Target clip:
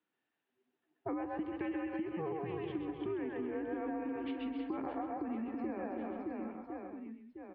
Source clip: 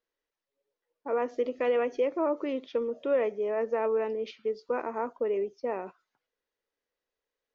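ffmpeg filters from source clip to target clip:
-filter_complex "[0:a]bandreject=f=50:t=h:w=6,bandreject=f=100:t=h:w=6,bandreject=f=150:t=h:w=6,bandreject=f=200:t=h:w=6,bandreject=f=250:t=h:w=6,asplit=2[a][b];[b]aecho=0:1:131:0.473[c];[a][c]amix=inputs=2:normalize=0,highpass=f=340:t=q:w=0.5412,highpass=f=340:t=q:w=1.307,lowpass=f=3.6k:t=q:w=0.5176,lowpass=f=3.6k:t=q:w=0.7071,lowpass=f=3.6k:t=q:w=1.932,afreqshift=-170,asplit=2[d][e];[e]aecho=0:1:130|325|617.5|1056|1714:0.631|0.398|0.251|0.158|0.1[f];[d][f]amix=inputs=2:normalize=0,acompressor=threshold=-38dB:ratio=10,volume=2.5dB"

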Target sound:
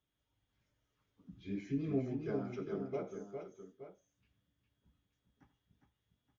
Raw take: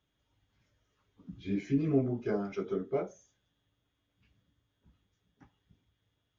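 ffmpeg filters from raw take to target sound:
-af "aecho=1:1:84|407|873:0.178|0.501|0.237,volume=-7.5dB"

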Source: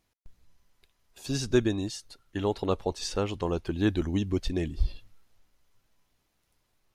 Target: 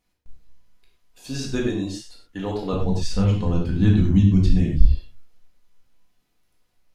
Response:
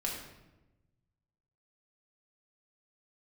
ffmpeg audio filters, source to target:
-filter_complex "[0:a]asettb=1/sr,asplit=3[a][b][c];[a]atrim=end=2.734[d];[b]atrim=start=2.73:end=4.82,asetpts=PTS-STARTPTS,afade=t=in:d=0.004:c=qsin,afade=t=out:st=2.086:d=0.004:c=qsin,lowshelf=f=240:t=q:w=1.5:g=12[e];[c]atrim=start=4.816[f];[d][e]acrossfade=d=0.004:c1=hsin:c2=qsin[g];[g][f]acrossfade=d=0.004:c1=qsin:c2=hsin[h];[1:a]atrim=start_sample=2205,afade=t=out:st=0.18:d=0.01,atrim=end_sample=8379[i];[h][i]afir=irnorm=-1:irlink=0,volume=-1dB"

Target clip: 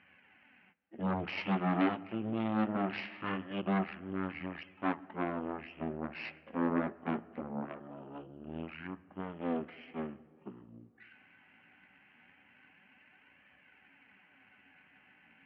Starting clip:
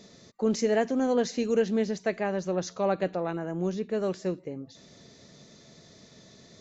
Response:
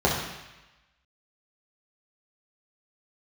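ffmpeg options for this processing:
-filter_complex "[0:a]flanger=delay=0.7:depth=7.5:regen=42:speed=0.52:shape=sinusoidal,aeval=exprs='0.15*(cos(1*acos(clip(val(0)/0.15,-1,1)))-cos(1*PI/2))+0.0133*(cos(5*acos(clip(val(0)/0.15,-1,1)))-cos(5*PI/2))+0.0168*(cos(7*acos(clip(val(0)/0.15,-1,1)))-cos(7*PI/2))+0.0266*(cos(8*acos(clip(val(0)/0.15,-1,1)))-cos(8*PI/2))':c=same,asplit=2[a][b];[1:a]atrim=start_sample=2205[c];[b][c]afir=irnorm=-1:irlink=0,volume=-32.5dB[d];[a][d]amix=inputs=2:normalize=0,asetrate=18846,aresample=44100,highpass=290,equalizer=f=460:t=q:w=4:g=-5,equalizer=f=1.3k:t=q:w=4:g=4,equalizer=f=2.2k:t=q:w=4:g=3,lowpass=f=3.8k:w=0.5412,lowpass=f=3.8k:w=1.3066"

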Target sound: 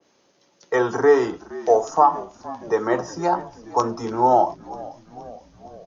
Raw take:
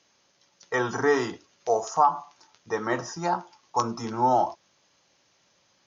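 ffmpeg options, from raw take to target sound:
-filter_complex "[0:a]equalizer=f=360:t=o:w=2.2:g=11.5,acrossover=split=150|350|3000[a][b][c][d];[b]acompressor=threshold=-38dB:ratio=6[e];[a][e][c][d]amix=inputs=4:normalize=0,asplit=7[f][g][h][i][j][k][l];[g]adelay=469,afreqshift=-55,volume=-19dB[m];[h]adelay=938,afreqshift=-110,volume=-22.9dB[n];[i]adelay=1407,afreqshift=-165,volume=-26.8dB[o];[j]adelay=1876,afreqshift=-220,volume=-30.6dB[p];[k]adelay=2345,afreqshift=-275,volume=-34.5dB[q];[l]adelay=2814,afreqshift=-330,volume=-38.4dB[r];[f][m][n][o][p][q][r]amix=inputs=7:normalize=0,adynamicequalizer=threshold=0.0251:dfrequency=1900:dqfactor=0.7:tfrequency=1900:tqfactor=0.7:attack=5:release=100:ratio=0.375:range=2:mode=cutabove:tftype=highshelf"

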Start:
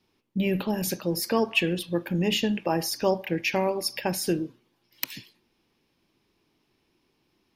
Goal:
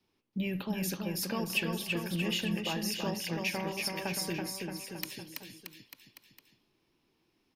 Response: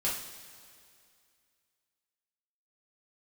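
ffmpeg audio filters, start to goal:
-filter_complex "[0:a]acrossover=split=230|1000[a][b][c];[b]acompressor=threshold=-34dB:ratio=6[d];[a][d][c]amix=inputs=3:normalize=0,asoftclip=type=tanh:threshold=-12dB,aecho=1:1:330|627|894.3|1135|1351:0.631|0.398|0.251|0.158|0.1,volume=-6dB"

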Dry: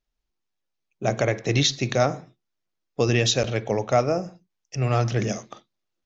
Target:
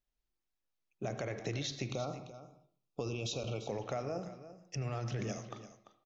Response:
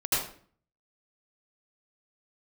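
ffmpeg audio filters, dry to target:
-filter_complex "[0:a]alimiter=limit=-16dB:level=0:latency=1:release=24,acompressor=threshold=-28dB:ratio=6,asettb=1/sr,asplit=3[a][b][c];[a]atrim=end=1.914[d];[b]atrim=start=1.91:end=3.69,asetpts=PTS-STARTPTS,afade=t=in:d=0.004:c=qsin,afade=t=out:st=1.776:d=0.004:c=qsin,asuperstop=centerf=1800:order=12:qfactor=2.1[e];[c]atrim=start=3.686[f];[d][e]acrossfade=d=0.004:c1=hsin:c2=qsin[g];[g][f]acrossfade=d=0.004:c1=qsin:c2=hsin,aecho=1:1:342:0.211,asplit=2[h][i];[1:a]atrim=start_sample=2205,lowpass=4.2k[j];[i][j]afir=irnorm=-1:irlink=0,volume=-22dB[k];[h][k]amix=inputs=2:normalize=0,volume=-7dB"

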